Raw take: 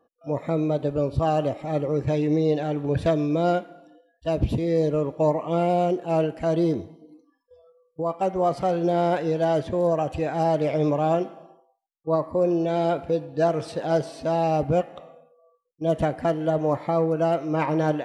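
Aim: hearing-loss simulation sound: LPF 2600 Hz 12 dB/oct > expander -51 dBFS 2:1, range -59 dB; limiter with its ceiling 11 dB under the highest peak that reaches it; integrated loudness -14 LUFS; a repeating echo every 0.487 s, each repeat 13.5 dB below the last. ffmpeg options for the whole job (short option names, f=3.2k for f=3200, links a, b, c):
-af "alimiter=limit=-22dB:level=0:latency=1,lowpass=2.6k,aecho=1:1:487|974:0.211|0.0444,agate=range=-59dB:threshold=-51dB:ratio=2,volume=16.5dB"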